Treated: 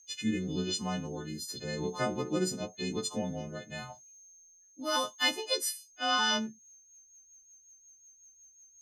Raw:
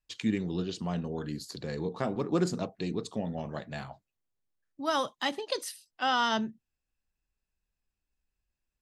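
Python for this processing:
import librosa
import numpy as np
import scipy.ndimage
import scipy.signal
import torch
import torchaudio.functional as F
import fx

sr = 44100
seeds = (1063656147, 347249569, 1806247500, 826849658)

y = fx.freq_snap(x, sr, grid_st=3)
y = y + 10.0 ** (-53.0 / 20.0) * np.sin(2.0 * np.pi * 6400.0 * np.arange(len(y)) / sr)
y = fx.rotary_switch(y, sr, hz=0.9, then_hz=5.5, switch_at_s=6.17)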